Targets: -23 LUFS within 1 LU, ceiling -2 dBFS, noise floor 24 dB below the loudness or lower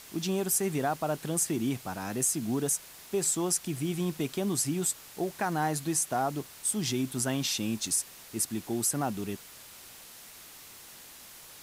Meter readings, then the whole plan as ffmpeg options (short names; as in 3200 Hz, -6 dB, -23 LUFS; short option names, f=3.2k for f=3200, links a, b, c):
noise floor -50 dBFS; noise floor target -54 dBFS; loudness -30.0 LUFS; peak -16.0 dBFS; loudness target -23.0 LUFS
-> -af "afftdn=nr=6:nf=-50"
-af "volume=7dB"